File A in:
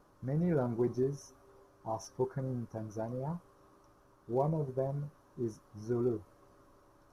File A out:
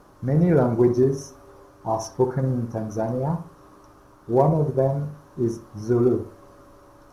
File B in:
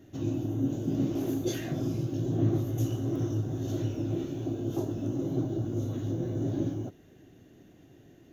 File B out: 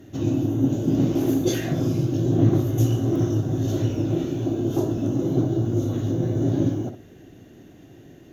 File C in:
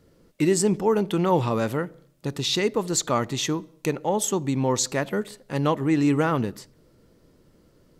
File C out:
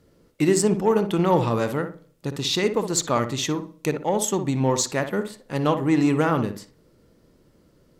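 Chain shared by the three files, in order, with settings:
added harmonics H 7 -32 dB, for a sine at -8.5 dBFS; darkening echo 60 ms, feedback 32%, low-pass 2000 Hz, level -8.5 dB; match loudness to -23 LUFS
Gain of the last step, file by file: +14.0, +9.5, +1.0 dB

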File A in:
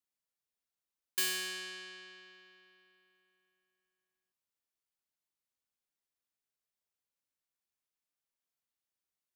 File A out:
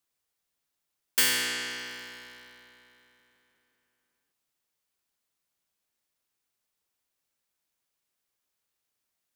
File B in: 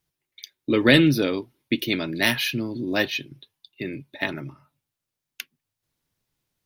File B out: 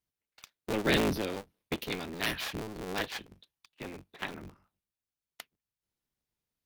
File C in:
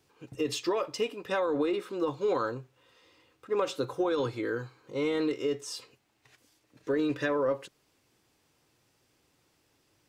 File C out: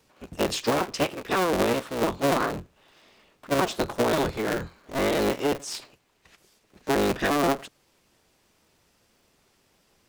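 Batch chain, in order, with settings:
cycle switcher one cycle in 3, inverted; normalise peaks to -12 dBFS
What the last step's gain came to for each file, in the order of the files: +9.0, -11.0, +5.0 dB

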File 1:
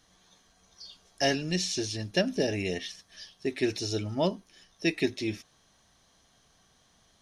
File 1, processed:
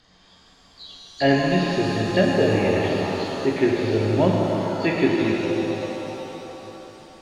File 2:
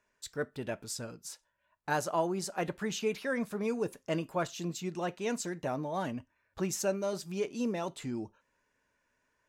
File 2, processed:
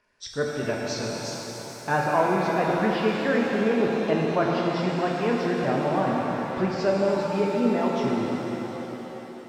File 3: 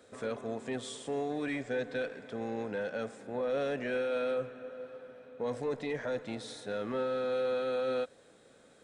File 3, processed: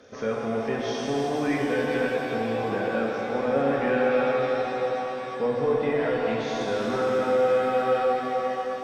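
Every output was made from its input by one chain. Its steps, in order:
nonlinear frequency compression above 3000 Hz 1.5:1; treble ducked by the level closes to 2100 Hz, closed at -30.5 dBFS; shimmer reverb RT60 3.8 s, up +7 st, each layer -8 dB, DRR -2 dB; gain +6.5 dB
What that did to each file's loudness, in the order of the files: +8.5, +10.0, +10.0 LU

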